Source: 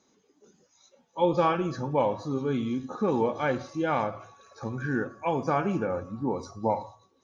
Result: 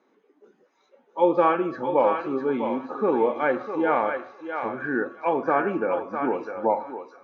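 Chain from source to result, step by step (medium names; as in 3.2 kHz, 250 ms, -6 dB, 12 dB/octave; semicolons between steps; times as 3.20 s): Chebyshev band-pass 320–2000 Hz, order 2; on a send: thinning echo 653 ms, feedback 17%, high-pass 720 Hz, level -4.5 dB; on the sum: trim +5 dB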